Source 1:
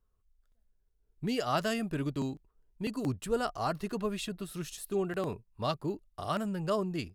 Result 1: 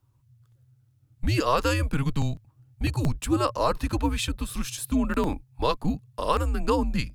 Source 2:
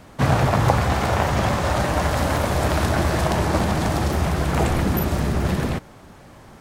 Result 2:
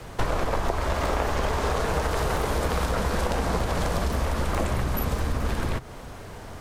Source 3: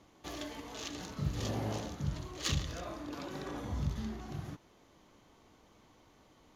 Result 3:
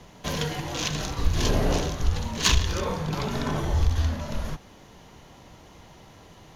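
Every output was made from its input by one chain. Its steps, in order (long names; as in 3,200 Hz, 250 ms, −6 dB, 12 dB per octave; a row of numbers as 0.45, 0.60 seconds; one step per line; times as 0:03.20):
frequency shifter −140 Hz
downward compressor 6 to 1, threshold −28 dBFS
dynamic equaliser 1,100 Hz, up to +3 dB, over −49 dBFS, Q 2.8
loudness normalisation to −27 LKFS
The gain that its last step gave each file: +9.5, +5.5, +14.0 decibels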